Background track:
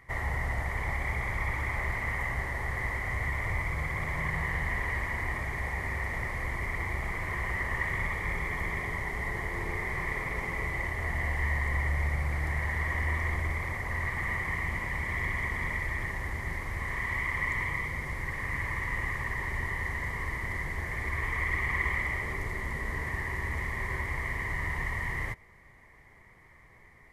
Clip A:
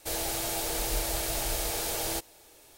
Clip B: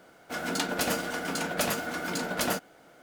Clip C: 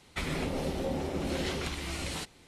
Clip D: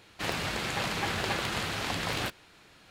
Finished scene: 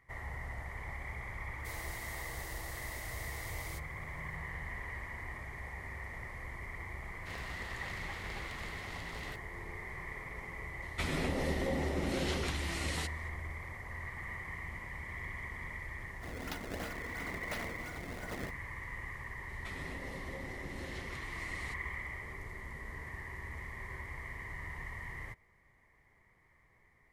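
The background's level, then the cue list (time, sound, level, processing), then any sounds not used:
background track -11 dB
1.59 add A -17 dB
7.06 add D -16 dB
10.82 add C -2 dB
15.92 add B -13.5 dB + decimation with a swept rate 26×, swing 160% 2.9 Hz
19.49 add C -14 dB + three-band squash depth 40%

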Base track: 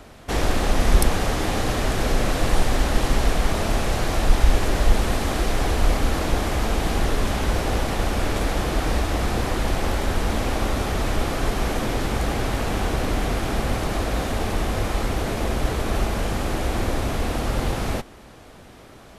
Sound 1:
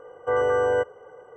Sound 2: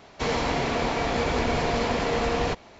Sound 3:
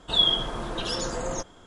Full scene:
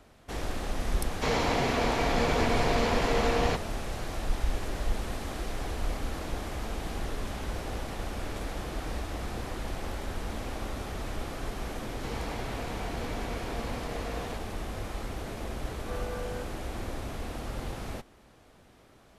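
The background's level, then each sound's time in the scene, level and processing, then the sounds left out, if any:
base track -12.5 dB
1.02 add 2 -2 dB
11.83 add 2 -14.5 dB
15.61 add 1 -17.5 dB
not used: 3

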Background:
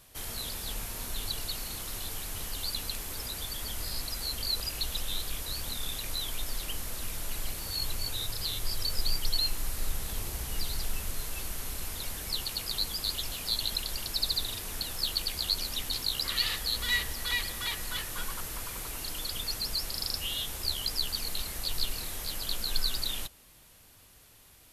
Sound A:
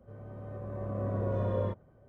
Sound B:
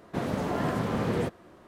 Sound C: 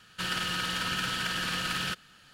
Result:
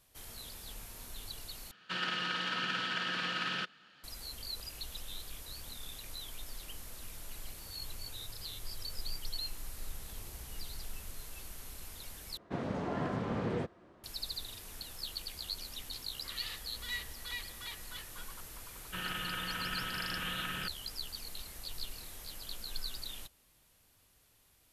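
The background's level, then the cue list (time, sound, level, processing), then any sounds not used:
background -10.5 dB
1.71 replace with C -3 dB + three-band isolator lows -21 dB, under 160 Hz, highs -22 dB, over 5100 Hz
12.37 replace with B -6.5 dB + air absorption 78 m
18.74 add C -6.5 dB + steep low-pass 3400 Hz
not used: A

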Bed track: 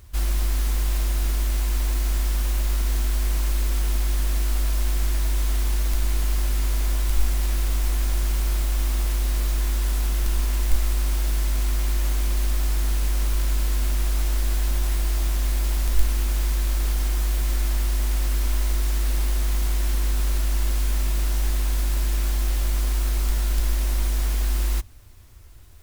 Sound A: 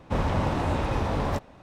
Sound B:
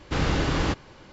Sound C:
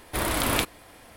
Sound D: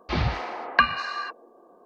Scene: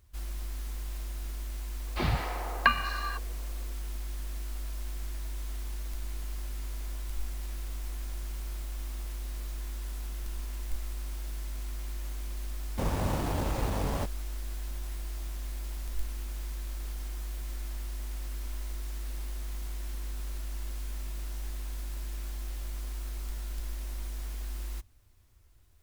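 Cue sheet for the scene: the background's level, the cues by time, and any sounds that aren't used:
bed track -14.5 dB
1.87 add D -4.5 dB
12.67 add A -5 dB + level-crossing sampler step -29.5 dBFS
not used: B, C

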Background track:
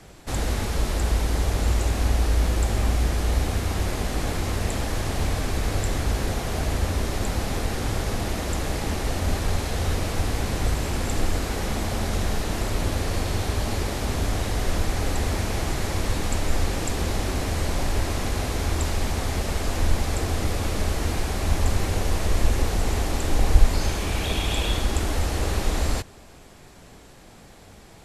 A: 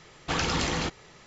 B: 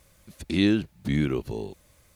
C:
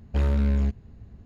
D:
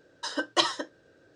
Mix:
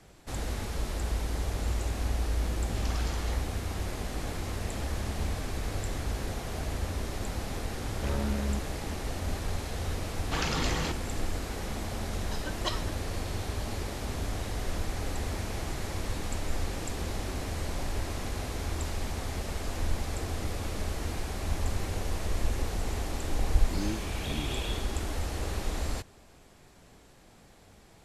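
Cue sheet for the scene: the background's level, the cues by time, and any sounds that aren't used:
background track -8.5 dB
2.15 add A -12 dB + three bands offset in time lows, highs, mids 0.31/0.45 s, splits 440/2500 Hz
4.63 add C -15.5 dB
7.88 add C -2.5 dB + low shelf 160 Hz -9 dB
10.03 add A -4 dB
12.08 add D -10 dB
23.19 add B -14 dB + median filter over 15 samples

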